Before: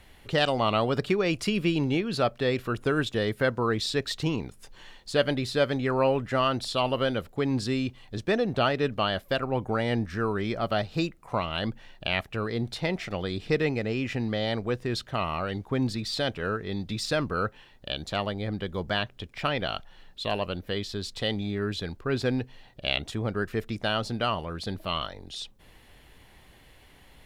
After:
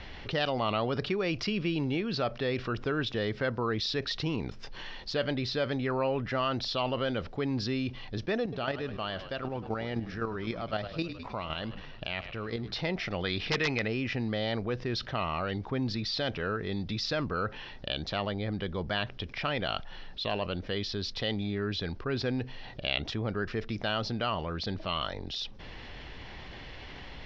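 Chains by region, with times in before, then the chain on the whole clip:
8.42–12.72 s: block-companded coder 7-bit + square tremolo 3.9 Hz, depth 65%, duty 15% + frequency-shifting echo 104 ms, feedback 54%, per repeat -37 Hz, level -18 dB
13.24–13.88 s: FFT filter 400 Hz 0 dB, 2.3 kHz +10 dB, 8 kHz +2 dB + integer overflow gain 13 dB
whole clip: elliptic low-pass 5.5 kHz, stop band 50 dB; level flattener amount 50%; trim -7 dB

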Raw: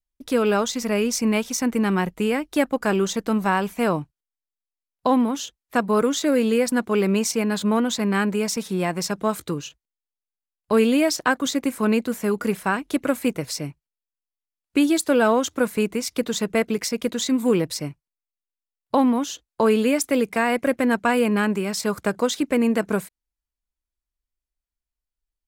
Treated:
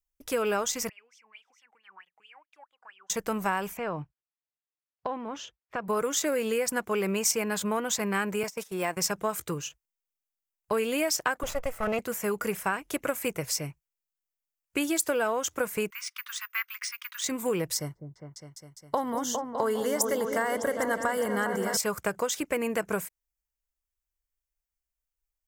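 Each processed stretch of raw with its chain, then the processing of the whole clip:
0.89–3.10 s: compression 2.5:1, threshold -31 dBFS + wah-wah 4.5 Hz 750–3400 Hz, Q 17
3.77–5.88 s: high-pass 54 Hz + distance through air 200 m + compression 4:1, threshold -24 dBFS
8.43–8.97 s: high-pass 250 Hz + de-esser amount 70% + gate -34 dBFS, range -14 dB
11.43–11.99 s: comb filter that takes the minimum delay 1.5 ms + treble shelf 4.1 kHz -11 dB
15.90–17.24 s: careless resampling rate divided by 3×, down filtered, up zero stuff + steep high-pass 1.1 kHz 48 dB/octave + distance through air 120 m
17.75–21.77 s: Butterworth band-stop 2.5 kHz, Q 2.9 + delay with an opening low-pass 203 ms, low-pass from 400 Hz, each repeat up 2 oct, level -6 dB
whole clip: fifteen-band graphic EQ 250 Hz -11 dB, 4 kHz -11 dB, 10 kHz -5 dB; compression, threshold -22 dBFS; treble shelf 2.9 kHz +9 dB; trim -2.5 dB

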